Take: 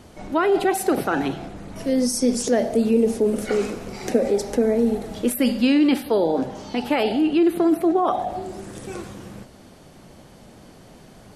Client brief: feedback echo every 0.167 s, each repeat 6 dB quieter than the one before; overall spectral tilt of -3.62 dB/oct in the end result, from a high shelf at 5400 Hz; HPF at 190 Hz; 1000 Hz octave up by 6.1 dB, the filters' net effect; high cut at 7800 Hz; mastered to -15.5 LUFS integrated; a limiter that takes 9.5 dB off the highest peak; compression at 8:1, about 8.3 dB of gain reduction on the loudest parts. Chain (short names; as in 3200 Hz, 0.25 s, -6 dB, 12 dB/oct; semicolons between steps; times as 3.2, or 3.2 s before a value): HPF 190 Hz; LPF 7800 Hz; bell 1000 Hz +8.5 dB; high shelf 5400 Hz +7.5 dB; compressor 8:1, threshold -21 dBFS; limiter -19 dBFS; feedback echo 0.167 s, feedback 50%, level -6 dB; gain +12 dB